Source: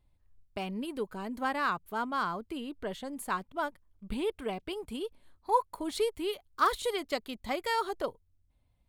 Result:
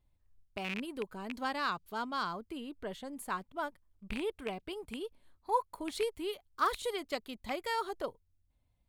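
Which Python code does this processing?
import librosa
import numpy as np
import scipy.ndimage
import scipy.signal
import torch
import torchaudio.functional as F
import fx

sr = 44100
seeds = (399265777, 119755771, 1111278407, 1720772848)

y = fx.rattle_buzz(x, sr, strikes_db=-39.0, level_db=-22.0)
y = fx.curve_eq(y, sr, hz=(2000.0, 4600.0, 9300.0), db=(0, 9, 0), at=(1.33, 2.33))
y = y * librosa.db_to_amplitude(-4.0)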